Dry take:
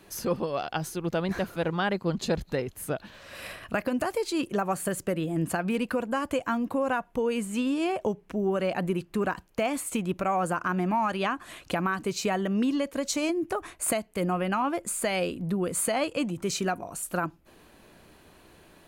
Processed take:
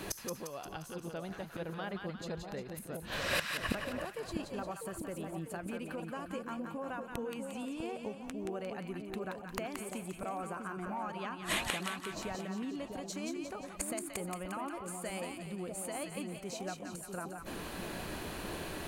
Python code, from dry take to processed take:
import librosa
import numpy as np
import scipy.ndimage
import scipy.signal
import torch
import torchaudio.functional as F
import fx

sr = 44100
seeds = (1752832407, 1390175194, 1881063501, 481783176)

y = fx.gate_flip(x, sr, shuts_db=-31.0, range_db=-26)
y = fx.echo_split(y, sr, split_hz=910.0, low_ms=648, high_ms=176, feedback_pct=52, wet_db=-4.5)
y = F.gain(torch.from_numpy(y), 12.0).numpy()